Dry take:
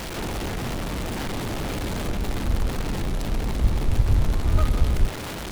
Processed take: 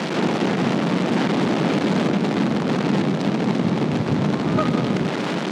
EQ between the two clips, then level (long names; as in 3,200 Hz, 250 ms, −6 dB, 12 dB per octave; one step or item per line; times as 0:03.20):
Butterworth high-pass 160 Hz 36 dB per octave
high-frequency loss of the air 120 metres
low-shelf EQ 290 Hz +8 dB
+8.5 dB